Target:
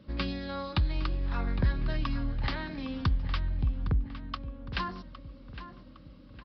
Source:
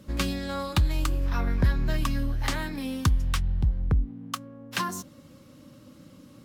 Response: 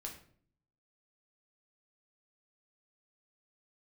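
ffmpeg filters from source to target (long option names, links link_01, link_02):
-filter_complex "[0:a]asplit=2[link_01][link_02];[link_02]adelay=810,lowpass=frequency=3800:poles=1,volume=-12dB,asplit=2[link_03][link_04];[link_04]adelay=810,lowpass=frequency=3800:poles=1,volume=0.46,asplit=2[link_05][link_06];[link_06]adelay=810,lowpass=frequency=3800:poles=1,volume=0.46,asplit=2[link_07][link_08];[link_08]adelay=810,lowpass=frequency=3800:poles=1,volume=0.46,asplit=2[link_09][link_10];[link_10]adelay=810,lowpass=frequency=3800:poles=1,volume=0.46[link_11];[link_03][link_05][link_07][link_09][link_11]amix=inputs=5:normalize=0[link_12];[link_01][link_12]amix=inputs=2:normalize=0,aresample=11025,aresample=44100,volume=-4.5dB"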